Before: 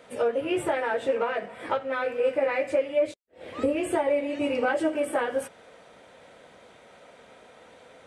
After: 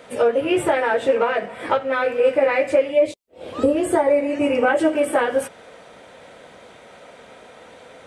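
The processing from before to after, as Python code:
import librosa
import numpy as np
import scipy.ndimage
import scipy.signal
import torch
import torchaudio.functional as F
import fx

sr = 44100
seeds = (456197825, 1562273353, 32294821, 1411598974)

y = fx.peak_eq(x, sr, hz=fx.line((2.9, 1300.0), (4.78, 4800.0)), db=-13.0, octaves=0.42, at=(2.9, 4.78), fade=0.02)
y = y * librosa.db_to_amplitude(7.5)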